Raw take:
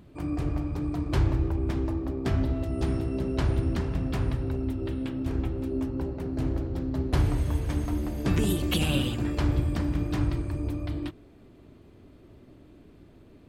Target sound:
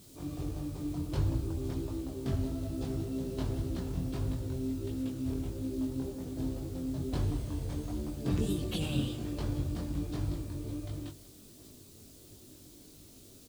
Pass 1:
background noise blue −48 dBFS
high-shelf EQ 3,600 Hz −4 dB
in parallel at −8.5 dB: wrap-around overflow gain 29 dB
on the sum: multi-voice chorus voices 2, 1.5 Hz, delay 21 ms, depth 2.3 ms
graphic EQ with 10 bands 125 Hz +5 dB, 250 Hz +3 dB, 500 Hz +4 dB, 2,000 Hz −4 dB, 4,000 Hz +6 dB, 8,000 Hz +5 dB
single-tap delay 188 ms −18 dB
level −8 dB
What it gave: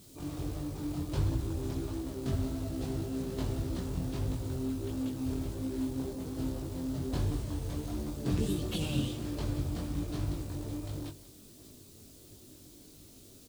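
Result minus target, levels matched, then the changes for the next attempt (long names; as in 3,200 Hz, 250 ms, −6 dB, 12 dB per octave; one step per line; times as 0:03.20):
wrap-around overflow: distortion −8 dB
change: wrap-around overflow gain 38 dB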